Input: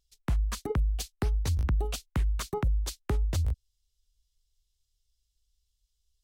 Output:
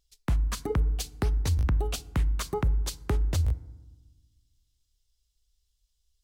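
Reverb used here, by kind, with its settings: FDN reverb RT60 1.1 s, low-frequency decay 1.6×, high-frequency decay 0.45×, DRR 16.5 dB; gain +2 dB

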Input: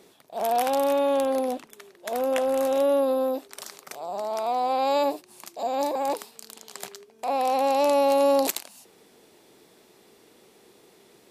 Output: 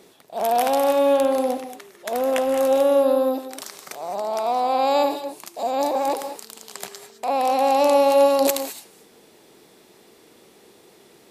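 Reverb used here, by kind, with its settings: non-linear reverb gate 0.24 s rising, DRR 9 dB; gain +3.5 dB

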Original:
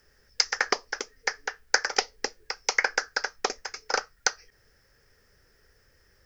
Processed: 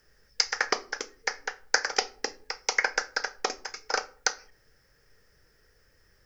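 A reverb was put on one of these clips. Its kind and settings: shoebox room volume 340 m³, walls furnished, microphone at 0.54 m; gain -1.5 dB

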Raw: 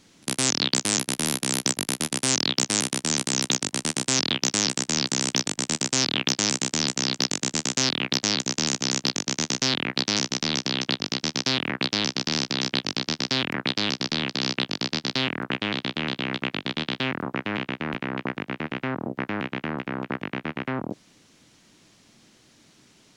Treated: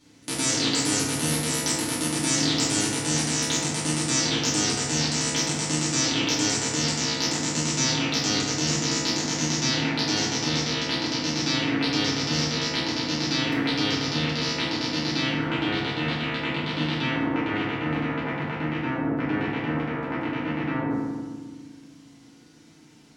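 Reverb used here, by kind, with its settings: FDN reverb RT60 1.5 s, low-frequency decay 1.55×, high-frequency decay 0.45×, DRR -9.5 dB; gain -8.5 dB

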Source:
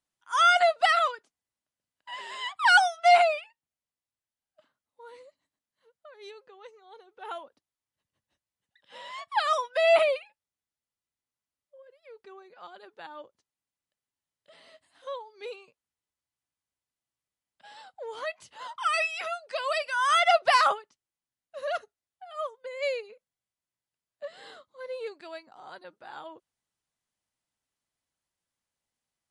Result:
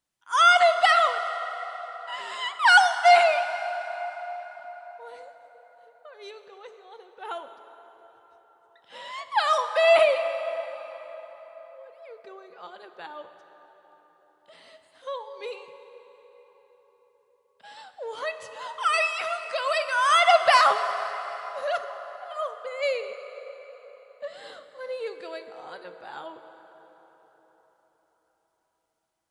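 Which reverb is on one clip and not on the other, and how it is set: plate-style reverb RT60 4.8 s, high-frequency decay 0.6×, DRR 8 dB; gain +3 dB

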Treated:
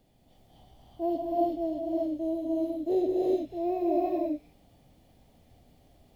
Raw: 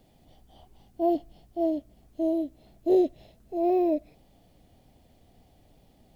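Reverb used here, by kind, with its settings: non-linear reverb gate 0.41 s rising, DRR -4 dB; gain -5.5 dB

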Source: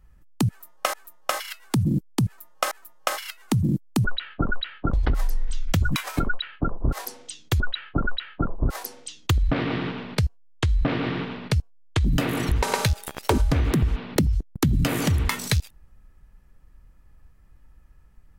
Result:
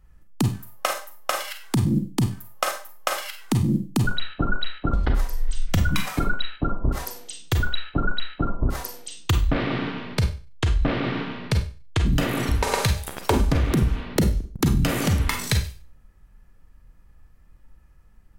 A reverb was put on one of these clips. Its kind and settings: Schroeder reverb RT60 0.36 s, combs from 32 ms, DRR 5 dB

